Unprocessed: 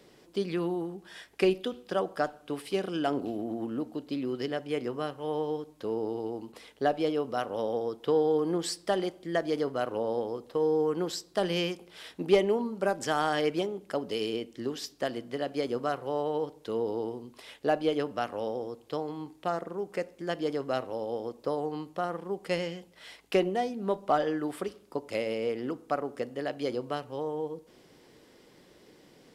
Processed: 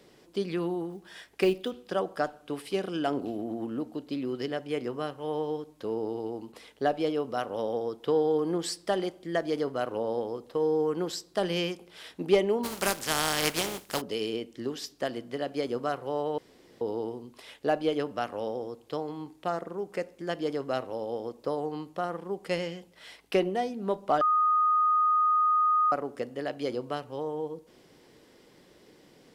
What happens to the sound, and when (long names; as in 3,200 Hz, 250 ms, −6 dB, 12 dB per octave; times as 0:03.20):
0:00.90–0:01.71: floating-point word with a short mantissa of 4 bits
0:12.63–0:14.00: compressing power law on the bin magnitudes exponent 0.41
0:16.38–0:16.81: fill with room tone
0:23.18–0:23.69: notch filter 7,000 Hz, Q 11
0:24.21–0:25.92: beep over 1,240 Hz −20.5 dBFS